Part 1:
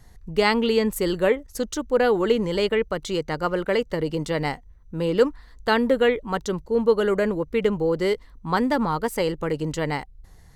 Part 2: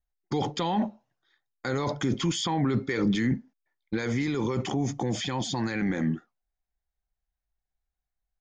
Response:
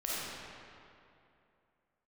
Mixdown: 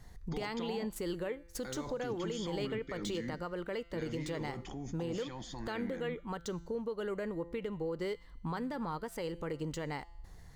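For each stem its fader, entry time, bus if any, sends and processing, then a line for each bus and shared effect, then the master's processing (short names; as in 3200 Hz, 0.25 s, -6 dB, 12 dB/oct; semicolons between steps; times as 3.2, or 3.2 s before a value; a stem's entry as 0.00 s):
+2.5 dB, 0.00 s, no send, median filter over 3 samples; compressor 6:1, threshold -31 dBFS, peak gain reduction 17.5 dB
+0.5 dB, 0.00 s, no send, auto duck -10 dB, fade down 0.45 s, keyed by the first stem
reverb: off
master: resonator 170 Hz, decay 0.91 s, harmonics all, mix 50%; limiter -28 dBFS, peak gain reduction 6.5 dB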